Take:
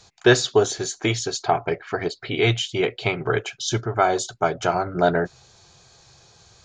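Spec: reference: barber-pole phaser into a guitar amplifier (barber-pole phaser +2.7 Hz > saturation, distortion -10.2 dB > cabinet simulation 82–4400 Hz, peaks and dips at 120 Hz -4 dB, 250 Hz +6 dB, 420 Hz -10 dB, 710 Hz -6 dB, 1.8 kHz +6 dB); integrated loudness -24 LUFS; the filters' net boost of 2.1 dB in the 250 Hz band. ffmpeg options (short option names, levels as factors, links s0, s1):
-filter_complex "[0:a]equalizer=f=250:t=o:g=3.5,asplit=2[s0][s1];[s1]afreqshift=2.7[s2];[s0][s2]amix=inputs=2:normalize=1,asoftclip=threshold=0.141,highpass=82,equalizer=f=120:t=q:w=4:g=-4,equalizer=f=250:t=q:w=4:g=6,equalizer=f=420:t=q:w=4:g=-10,equalizer=f=710:t=q:w=4:g=-6,equalizer=f=1800:t=q:w=4:g=6,lowpass=f=4400:w=0.5412,lowpass=f=4400:w=1.3066,volume=1.88"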